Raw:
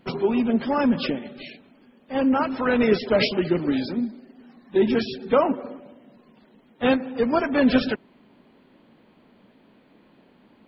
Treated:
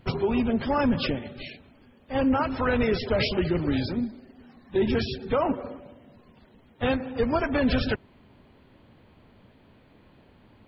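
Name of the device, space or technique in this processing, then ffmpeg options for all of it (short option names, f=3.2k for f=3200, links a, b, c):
car stereo with a boomy subwoofer: -af "lowshelf=f=140:t=q:w=1.5:g=12.5,alimiter=limit=-15dB:level=0:latency=1:release=65"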